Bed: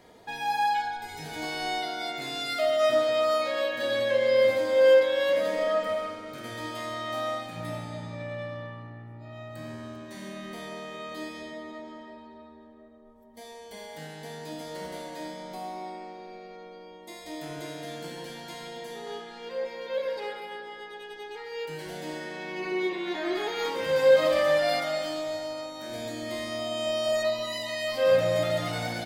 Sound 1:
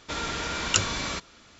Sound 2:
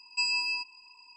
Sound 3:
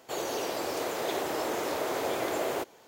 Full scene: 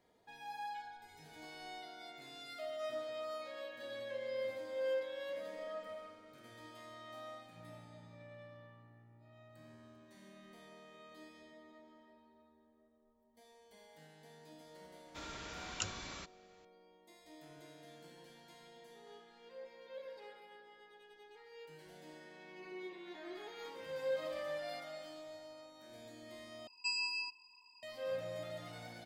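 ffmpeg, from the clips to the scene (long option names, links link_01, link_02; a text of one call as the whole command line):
ffmpeg -i bed.wav -i cue0.wav -i cue1.wav -filter_complex "[0:a]volume=-18.5dB,asplit=2[link_01][link_02];[link_01]atrim=end=26.674[link_03];[2:a]atrim=end=1.16,asetpts=PTS-STARTPTS,volume=-8.5dB[link_04];[link_02]atrim=start=27.826[link_05];[1:a]atrim=end=1.59,asetpts=PTS-STARTPTS,volume=-16.5dB,afade=type=in:duration=0.004:curve=hsin,afade=type=out:start_time=1.586:duration=0.004:curve=hsin,adelay=15060[link_06];[link_03][link_04]acrossfade=duration=0.004:curve1=hsin:curve2=hsin[link_07];[link_07][link_05]acrossfade=duration=0.004:curve1=hsin:curve2=hsin[link_08];[link_08][link_06]amix=inputs=2:normalize=0" out.wav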